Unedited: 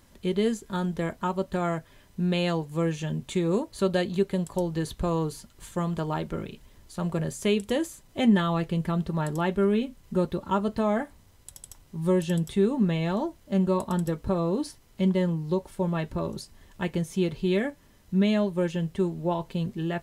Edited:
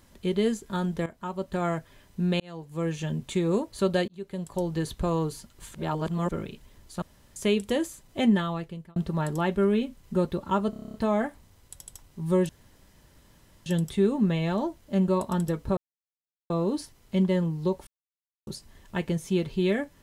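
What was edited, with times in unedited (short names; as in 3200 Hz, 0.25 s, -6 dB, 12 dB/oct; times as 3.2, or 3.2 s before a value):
1.06–1.65 fade in, from -14 dB
2.4–3.01 fade in
4.08–4.7 fade in linear
5.74–6.31 reverse
7.02–7.36 room tone
8.2–8.96 fade out
10.7 stutter 0.03 s, 9 plays
12.25 insert room tone 1.17 s
14.36 insert silence 0.73 s
15.73–16.33 mute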